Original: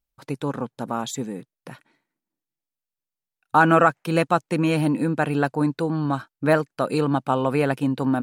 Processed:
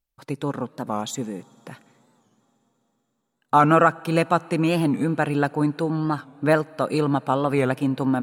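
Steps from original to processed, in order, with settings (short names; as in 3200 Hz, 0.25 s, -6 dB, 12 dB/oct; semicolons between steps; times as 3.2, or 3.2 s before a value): on a send at -23 dB: reverb RT60 4.6 s, pre-delay 42 ms; on the sum: record warp 45 rpm, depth 160 cents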